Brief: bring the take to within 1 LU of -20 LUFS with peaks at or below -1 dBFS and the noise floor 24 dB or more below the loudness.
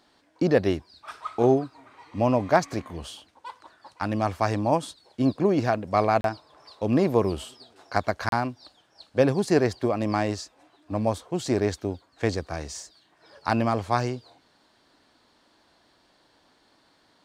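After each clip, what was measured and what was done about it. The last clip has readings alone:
dropouts 2; longest dropout 32 ms; loudness -26.0 LUFS; peak level -5.5 dBFS; loudness target -20.0 LUFS
-> interpolate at 6.21/8.29 s, 32 ms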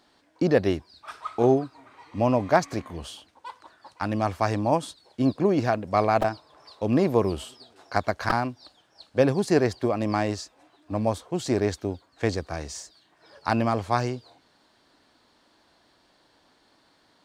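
dropouts 0; loudness -25.5 LUFS; peak level -5.5 dBFS; loudness target -20.0 LUFS
-> trim +5.5 dB; peak limiter -1 dBFS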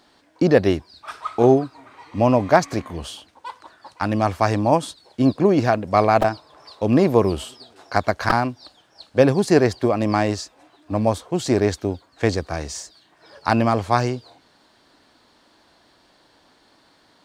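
loudness -20.0 LUFS; peak level -1.0 dBFS; noise floor -58 dBFS

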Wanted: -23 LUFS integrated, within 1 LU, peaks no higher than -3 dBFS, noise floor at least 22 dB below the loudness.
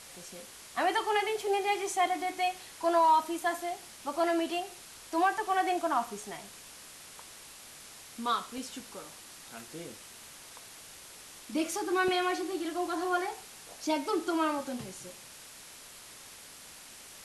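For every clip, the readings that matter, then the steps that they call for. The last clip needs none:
noise floor -50 dBFS; noise floor target -53 dBFS; loudness -31.0 LUFS; peak level -15.5 dBFS; loudness target -23.0 LUFS
-> noise reduction 6 dB, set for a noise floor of -50 dBFS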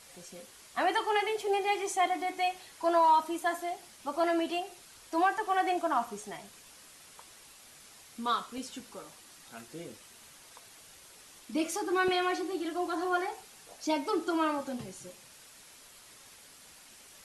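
noise floor -55 dBFS; loudness -31.0 LUFS; peak level -15.5 dBFS; loudness target -23.0 LUFS
-> trim +8 dB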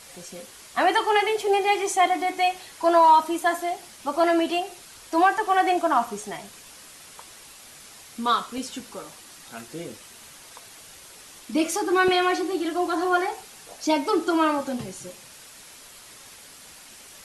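loudness -23.0 LUFS; peak level -7.5 dBFS; noise floor -47 dBFS

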